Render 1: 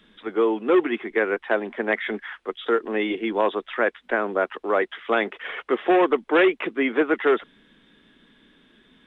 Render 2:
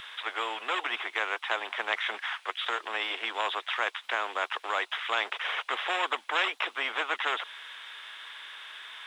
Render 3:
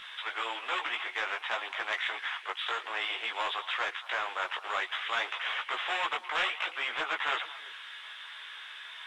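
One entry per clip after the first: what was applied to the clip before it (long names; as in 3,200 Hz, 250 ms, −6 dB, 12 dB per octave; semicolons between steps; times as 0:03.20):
high-pass filter 890 Hz 24 dB per octave; dynamic equaliser 1,900 Hz, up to −6 dB, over −38 dBFS, Q 1.8; every bin compressed towards the loudest bin 2 to 1; level −1.5 dB
mid-hump overdrive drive 8 dB, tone 7,300 Hz, clips at −12.5 dBFS; multi-voice chorus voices 4, 0.51 Hz, delay 17 ms, depth 4.8 ms; echo through a band-pass that steps 113 ms, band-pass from 2,600 Hz, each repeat −1.4 octaves, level −11.5 dB; level −2 dB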